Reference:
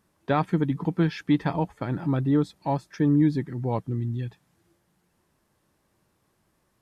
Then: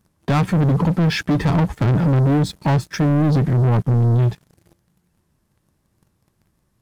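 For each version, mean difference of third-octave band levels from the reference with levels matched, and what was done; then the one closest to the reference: 6.5 dB: tone controls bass +11 dB, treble +3 dB; peak limiter -16 dBFS, peak gain reduction 10.5 dB; waveshaping leveller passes 3; trim +3.5 dB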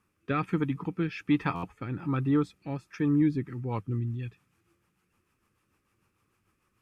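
2.5 dB: graphic EQ with 31 bands 100 Hz +5 dB, 160 Hz -4 dB, 630 Hz -10 dB, 1.25 kHz +10 dB, 2.5 kHz +11 dB, 4 kHz -4 dB; rotary cabinet horn 1.2 Hz, later 6.7 Hz, at 3.10 s; buffer glitch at 1.55 s, samples 512, times 6; trim -2.5 dB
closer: second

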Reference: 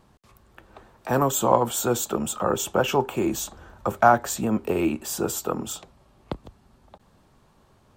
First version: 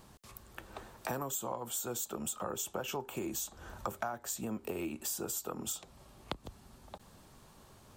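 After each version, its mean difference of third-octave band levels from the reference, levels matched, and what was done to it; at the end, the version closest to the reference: 5.5 dB: treble shelf 4.4 kHz +10.5 dB; compression 10:1, threshold -35 dBFS, peak gain reduction 24 dB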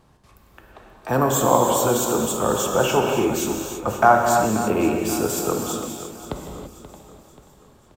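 8.0 dB: on a send: feedback delay 532 ms, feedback 46%, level -13.5 dB; on the sum: gated-style reverb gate 360 ms flat, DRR 1 dB; trim +1 dB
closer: first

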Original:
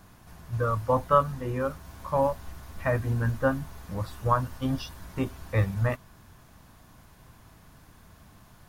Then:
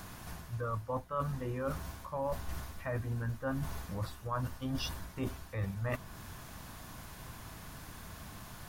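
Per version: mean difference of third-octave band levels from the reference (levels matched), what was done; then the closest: 9.0 dB: reverse; compression 8:1, threshold -38 dBFS, peak gain reduction 22 dB; reverse; tape noise reduction on one side only encoder only; trim +4.5 dB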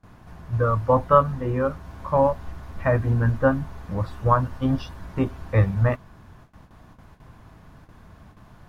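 4.5 dB: low-pass 1.7 kHz 6 dB/octave; gate with hold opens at -45 dBFS; trim +6 dB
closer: second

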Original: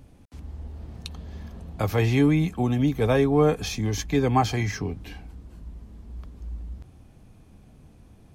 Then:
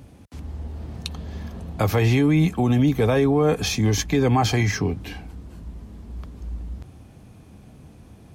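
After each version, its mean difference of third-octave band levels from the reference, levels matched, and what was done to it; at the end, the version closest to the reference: 2.5 dB: high-pass 60 Hz; peak limiter -17 dBFS, peak gain reduction 8.5 dB; trim +6.5 dB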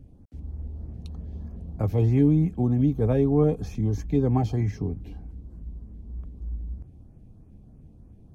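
6.0 dB: tilt shelf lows +9 dB, about 760 Hz; LFO notch saw up 3.2 Hz 920–4700 Hz; trim -6.5 dB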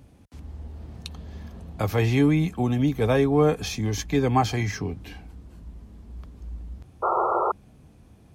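1.0 dB: high-pass 45 Hz; painted sound noise, 7.02–7.52 s, 340–1400 Hz -23 dBFS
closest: third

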